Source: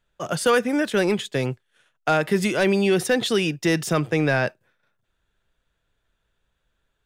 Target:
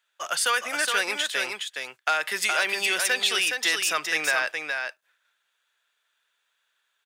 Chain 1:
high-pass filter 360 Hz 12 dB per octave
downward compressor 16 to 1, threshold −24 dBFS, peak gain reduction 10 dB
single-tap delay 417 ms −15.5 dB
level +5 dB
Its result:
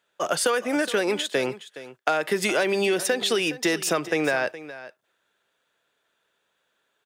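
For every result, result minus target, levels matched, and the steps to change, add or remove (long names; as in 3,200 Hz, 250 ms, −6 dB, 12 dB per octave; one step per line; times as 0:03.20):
500 Hz band +10.5 dB; echo-to-direct −10.5 dB
change: high-pass filter 1,300 Hz 12 dB per octave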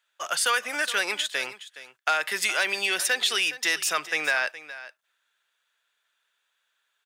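echo-to-direct −10.5 dB
change: single-tap delay 417 ms −5 dB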